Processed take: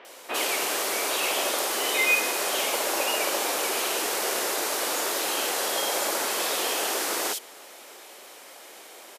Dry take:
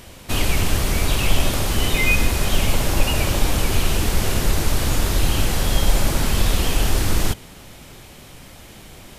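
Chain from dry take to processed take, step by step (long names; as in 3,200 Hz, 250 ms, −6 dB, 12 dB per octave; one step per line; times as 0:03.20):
high-pass filter 400 Hz 24 dB per octave
multiband delay without the direct sound lows, highs 50 ms, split 3,000 Hz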